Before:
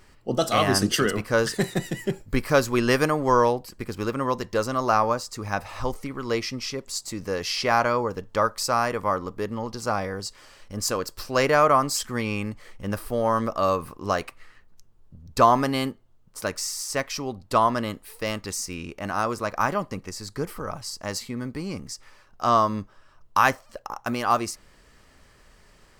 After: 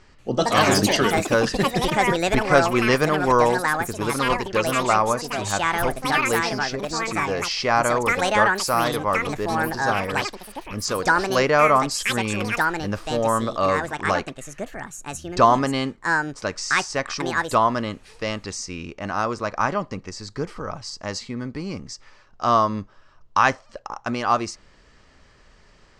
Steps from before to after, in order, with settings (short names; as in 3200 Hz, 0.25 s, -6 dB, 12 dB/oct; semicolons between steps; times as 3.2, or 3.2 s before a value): LPF 6900 Hz 24 dB/oct; echoes that change speed 0.187 s, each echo +6 st, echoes 2; gain +1.5 dB